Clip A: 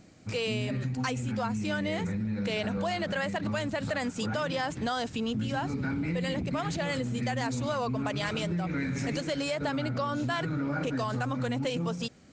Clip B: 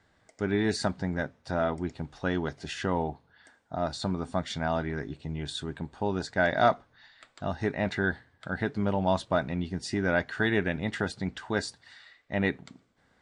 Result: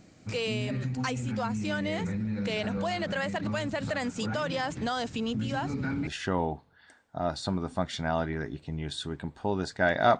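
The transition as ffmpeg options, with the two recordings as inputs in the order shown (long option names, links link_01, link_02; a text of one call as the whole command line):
ffmpeg -i cue0.wav -i cue1.wav -filter_complex "[0:a]apad=whole_dur=10.19,atrim=end=10.19,atrim=end=6.072[link_01];[1:a]atrim=start=2.638:end=6.76[link_02];[link_01][link_02]acrossfade=duration=0.004:curve1=hsin:curve2=hsin" out.wav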